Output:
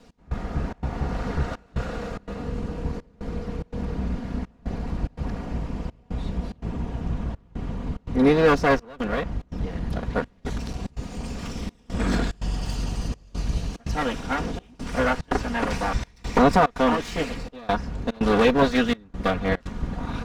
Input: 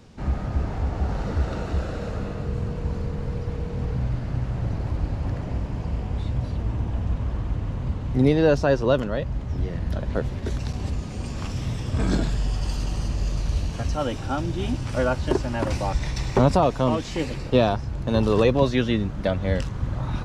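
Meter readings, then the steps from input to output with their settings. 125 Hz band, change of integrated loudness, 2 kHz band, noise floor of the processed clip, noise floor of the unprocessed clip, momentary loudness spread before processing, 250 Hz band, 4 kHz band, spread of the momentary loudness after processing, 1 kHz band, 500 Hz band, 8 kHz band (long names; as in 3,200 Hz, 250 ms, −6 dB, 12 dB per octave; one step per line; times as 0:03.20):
−5.5 dB, −1.0 dB, +5.0 dB, −55 dBFS, −32 dBFS, 10 LU, +0.5 dB, +0.5 dB, 14 LU, +3.5 dB, −1.0 dB, −0.5 dB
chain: lower of the sound and its delayed copy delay 4.2 ms
dynamic equaliser 1,600 Hz, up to +6 dB, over −40 dBFS, Q 0.89
gate pattern "x..xxxx.xxxxxx" 145 BPM −24 dB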